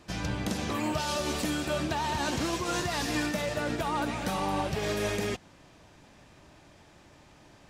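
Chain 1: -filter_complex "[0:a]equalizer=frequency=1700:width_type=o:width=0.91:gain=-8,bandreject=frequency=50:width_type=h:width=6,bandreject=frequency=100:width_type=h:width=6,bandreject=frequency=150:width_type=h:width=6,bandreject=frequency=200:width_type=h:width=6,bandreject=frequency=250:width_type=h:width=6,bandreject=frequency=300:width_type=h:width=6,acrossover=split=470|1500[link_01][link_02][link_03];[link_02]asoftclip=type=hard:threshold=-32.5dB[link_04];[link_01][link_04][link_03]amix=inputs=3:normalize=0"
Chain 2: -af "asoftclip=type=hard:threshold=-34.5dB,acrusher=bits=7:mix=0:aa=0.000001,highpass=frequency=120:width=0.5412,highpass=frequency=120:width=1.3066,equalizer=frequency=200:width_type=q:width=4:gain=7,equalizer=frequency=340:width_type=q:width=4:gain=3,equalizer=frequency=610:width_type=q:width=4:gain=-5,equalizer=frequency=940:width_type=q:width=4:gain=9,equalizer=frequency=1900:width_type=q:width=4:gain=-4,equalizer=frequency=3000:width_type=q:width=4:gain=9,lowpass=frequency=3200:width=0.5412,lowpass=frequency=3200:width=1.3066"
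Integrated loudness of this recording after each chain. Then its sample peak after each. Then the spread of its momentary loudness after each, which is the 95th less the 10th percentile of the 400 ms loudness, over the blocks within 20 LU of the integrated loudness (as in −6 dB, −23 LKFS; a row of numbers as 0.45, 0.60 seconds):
−32.5, −35.5 LKFS; −19.0, −24.5 dBFS; 2, 3 LU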